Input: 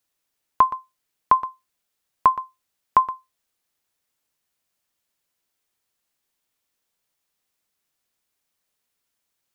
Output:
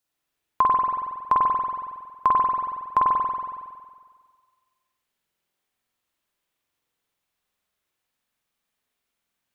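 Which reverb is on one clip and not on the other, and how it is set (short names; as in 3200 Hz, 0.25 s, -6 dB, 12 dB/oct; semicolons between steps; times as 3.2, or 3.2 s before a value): spring tank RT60 1.7 s, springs 46 ms, chirp 20 ms, DRR -4.5 dB; gain -4.5 dB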